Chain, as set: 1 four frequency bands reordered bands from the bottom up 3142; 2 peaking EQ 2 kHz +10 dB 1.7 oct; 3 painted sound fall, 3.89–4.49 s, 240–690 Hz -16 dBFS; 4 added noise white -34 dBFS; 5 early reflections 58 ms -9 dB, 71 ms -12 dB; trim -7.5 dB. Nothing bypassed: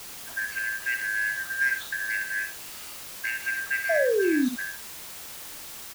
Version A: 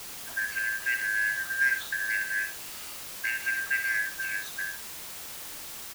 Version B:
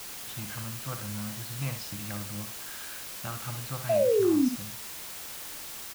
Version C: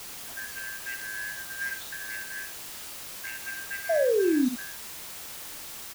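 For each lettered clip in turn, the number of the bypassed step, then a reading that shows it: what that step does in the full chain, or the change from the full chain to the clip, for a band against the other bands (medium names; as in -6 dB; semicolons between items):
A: 3, 500 Hz band -24.0 dB; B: 1, 2 kHz band -19.0 dB; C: 2, 2 kHz band -8.5 dB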